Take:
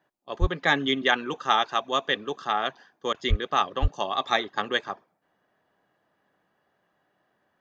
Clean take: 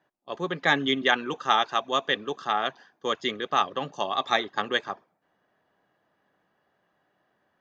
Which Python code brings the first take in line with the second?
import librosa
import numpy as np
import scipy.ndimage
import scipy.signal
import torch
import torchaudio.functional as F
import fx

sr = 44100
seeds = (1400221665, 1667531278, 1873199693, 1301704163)

y = fx.highpass(x, sr, hz=140.0, slope=24, at=(0.4, 0.52), fade=0.02)
y = fx.highpass(y, sr, hz=140.0, slope=24, at=(3.29, 3.41), fade=0.02)
y = fx.highpass(y, sr, hz=140.0, slope=24, at=(3.81, 3.93), fade=0.02)
y = fx.fix_interpolate(y, sr, at_s=(3.13,), length_ms=11.0)